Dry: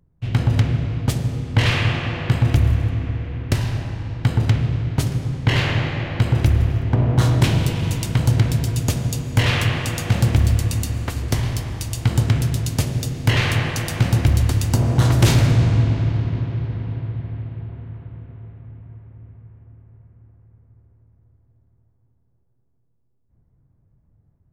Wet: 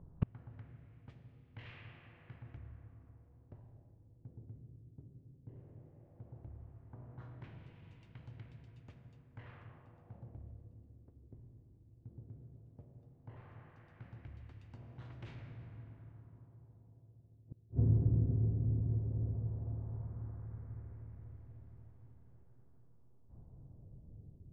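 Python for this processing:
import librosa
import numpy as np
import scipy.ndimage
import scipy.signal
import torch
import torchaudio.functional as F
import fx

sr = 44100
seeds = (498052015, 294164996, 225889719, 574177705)

y = fx.gate_flip(x, sr, shuts_db=-23.0, range_db=-40)
y = fx.filter_lfo_lowpass(y, sr, shape='sine', hz=0.15, low_hz=350.0, high_hz=2500.0, q=1.3)
y = F.gain(torch.from_numpy(y), 5.0).numpy()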